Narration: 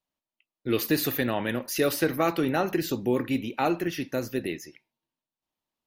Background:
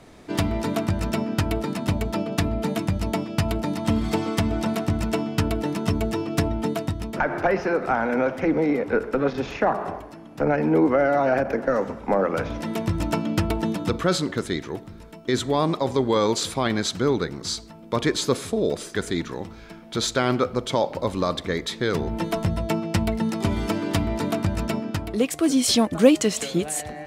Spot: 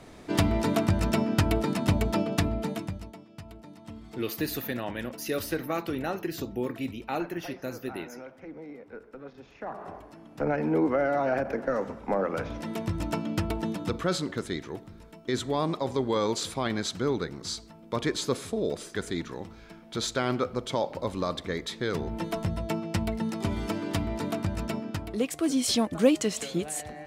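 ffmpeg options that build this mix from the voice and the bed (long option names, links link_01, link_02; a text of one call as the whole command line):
ffmpeg -i stem1.wav -i stem2.wav -filter_complex "[0:a]adelay=3500,volume=-6dB[link_01];[1:a]volume=15dB,afade=type=out:start_time=2.17:duration=0.96:silence=0.0891251,afade=type=in:start_time=9.55:duration=0.69:silence=0.16788[link_02];[link_01][link_02]amix=inputs=2:normalize=0" out.wav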